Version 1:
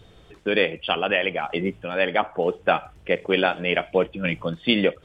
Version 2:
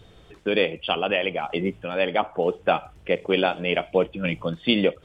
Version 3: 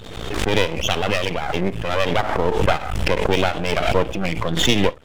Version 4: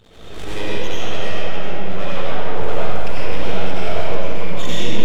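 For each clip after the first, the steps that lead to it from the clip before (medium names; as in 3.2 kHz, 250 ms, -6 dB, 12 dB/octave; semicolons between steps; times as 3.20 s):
dynamic bell 1.7 kHz, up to -7 dB, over -39 dBFS, Q 2.2
half-wave rectifier; swell ahead of each attack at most 42 dB/s; trim +6 dB
reverberation RT60 3.0 s, pre-delay 50 ms, DRR -9 dB; trim -14 dB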